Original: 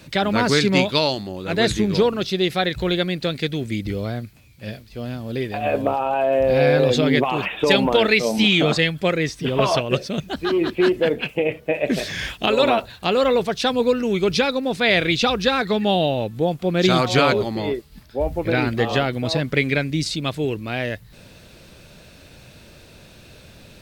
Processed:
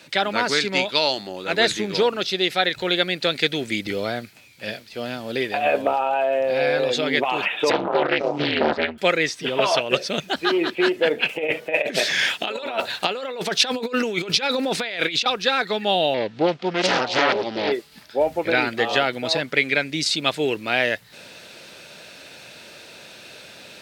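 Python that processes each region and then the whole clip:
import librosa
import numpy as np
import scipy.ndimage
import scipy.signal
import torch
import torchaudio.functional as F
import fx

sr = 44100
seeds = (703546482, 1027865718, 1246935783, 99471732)

y = fx.chain(x, sr, fx.lowpass(hz=1500.0, slope=12),
    fx.ring_mod(carrier_hz=75.0),
    fx.doppler_dist(depth_ms=0.51), at=(7.7, 8.98))
y = fx.chain(y, sr, fx.highpass(hz=110.0, slope=12),
    fx.over_compress(threshold_db=-24.0, ratio=-0.5), at=(11.29, 15.26))
y = fx.chain(y, sr, fx.lowpass(hz=5300.0, slope=24),
    fx.doppler_dist(depth_ms=0.9), at=(16.14, 17.72))
y = fx.weighting(y, sr, curve='A')
y = fx.rider(y, sr, range_db=4, speed_s=0.5)
y = fx.notch(y, sr, hz=1100.0, q=11.0)
y = y * 10.0 ** (2.5 / 20.0)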